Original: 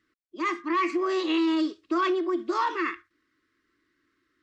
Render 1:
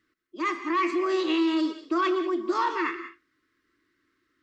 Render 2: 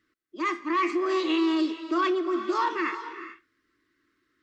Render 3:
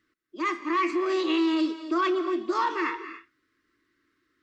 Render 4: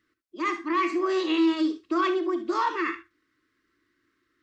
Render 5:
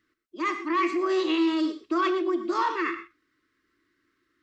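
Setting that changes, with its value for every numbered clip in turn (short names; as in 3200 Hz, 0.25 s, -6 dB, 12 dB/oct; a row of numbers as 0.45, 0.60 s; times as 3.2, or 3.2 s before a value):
non-linear reverb, gate: 210, 460, 310, 90, 140 ms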